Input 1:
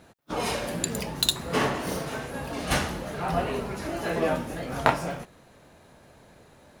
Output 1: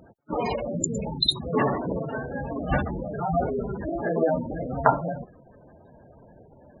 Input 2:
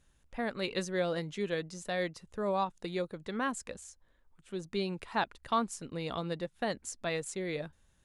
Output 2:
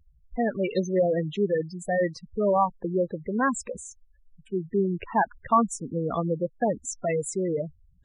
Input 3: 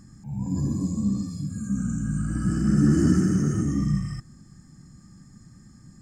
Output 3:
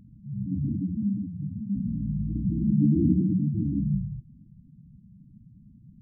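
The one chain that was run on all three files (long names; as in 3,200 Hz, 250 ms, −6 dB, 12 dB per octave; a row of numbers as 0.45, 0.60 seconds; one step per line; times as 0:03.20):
gate on every frequency bin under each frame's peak −10 dB strong
loudness normalisation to −27 LKFS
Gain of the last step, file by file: +4.0, +10.0, −2.0 decibels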